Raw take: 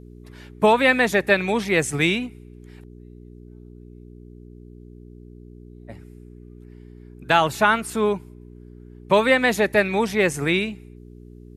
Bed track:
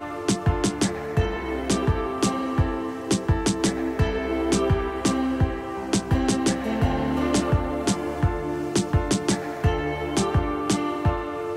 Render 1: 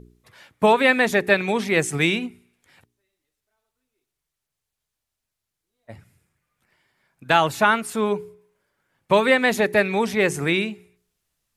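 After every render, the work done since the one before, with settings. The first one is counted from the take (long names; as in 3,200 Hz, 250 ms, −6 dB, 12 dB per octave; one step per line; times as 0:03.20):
hum removal 60 Hz, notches 7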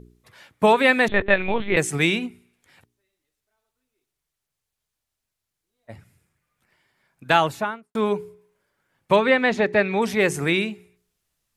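0:01.08–0:01.77: linear-prediction vocoder at 8 kHz pitch kept
0:07.32–0:07.95: fade out and dull
0:09.16–0:10.02: high-frequency loss of the air 130 metres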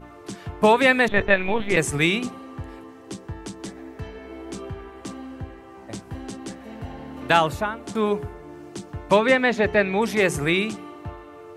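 mix in bed track −13 dB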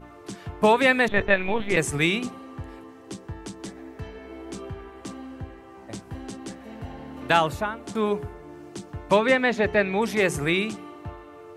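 level −2 dB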